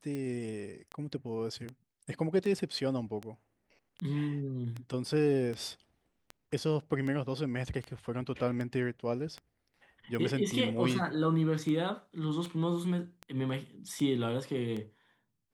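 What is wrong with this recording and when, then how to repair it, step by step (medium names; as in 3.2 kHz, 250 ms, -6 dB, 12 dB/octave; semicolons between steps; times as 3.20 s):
tick 78 rpm -26 dBFS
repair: de-click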